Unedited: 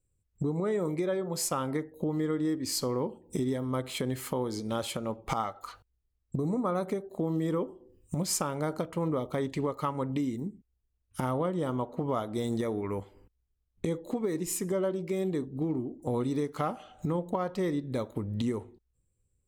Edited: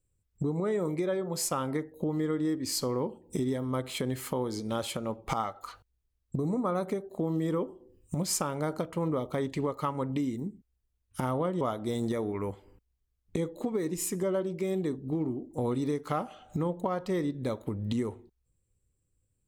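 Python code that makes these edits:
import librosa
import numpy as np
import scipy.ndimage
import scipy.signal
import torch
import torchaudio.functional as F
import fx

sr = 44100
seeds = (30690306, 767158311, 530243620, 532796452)

y = fx.edit(x, sr, fx.cut(start_s=11.61, length_s=0.49), tone=tone)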